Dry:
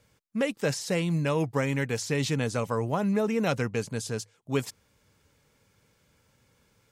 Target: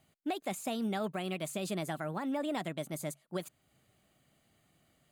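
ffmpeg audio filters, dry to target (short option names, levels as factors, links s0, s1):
-af "equalizer=f=4100:w=7.9:g=-12.5,asetrate=59535,aresample=44100,alimiter=limit=0.0891:level=0:latency=1:release=350,volume=0.596"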